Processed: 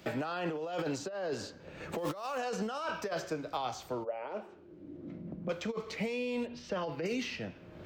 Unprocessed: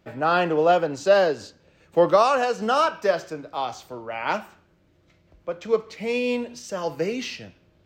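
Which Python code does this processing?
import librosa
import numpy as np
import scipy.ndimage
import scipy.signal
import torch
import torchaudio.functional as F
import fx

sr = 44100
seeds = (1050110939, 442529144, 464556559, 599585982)

y = fx.zero_step(x, sr, step_db=-32.0, at=(1.98, 2.38))
y = fx.over_compress(y, sr, threshold_db=-28.0, ratio=-1.0)
y = fx.bandpass_q(y, sr, hz=fx.line((4.03, 580.0), (5.49, 180.0)), q=3.4, at=(4.03, 5.49), fade=0.02)
y = fx.air_absorb(y, sr, metres=350.0, at=(6.45, 7.05), fade=0.02)
y = fx.band_squash(y, sr, depth_pct=100)
y = y * 10.0 ** (-8.0 / 20.0)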